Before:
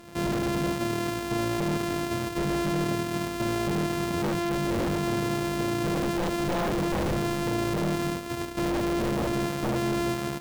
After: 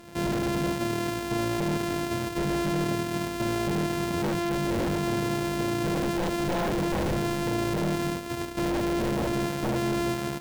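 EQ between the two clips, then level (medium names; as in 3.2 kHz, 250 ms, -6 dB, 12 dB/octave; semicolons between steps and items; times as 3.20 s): band-stop 1.2 kHz, Q 14; 0.0 dB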